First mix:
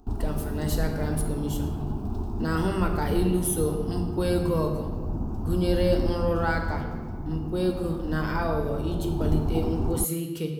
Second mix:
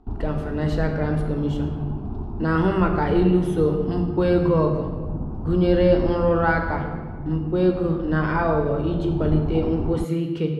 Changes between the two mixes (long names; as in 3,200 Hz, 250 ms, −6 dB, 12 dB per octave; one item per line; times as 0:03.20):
speech +6.5 dB
master: add low-pass filter 2,500 Hz 12 dB per octave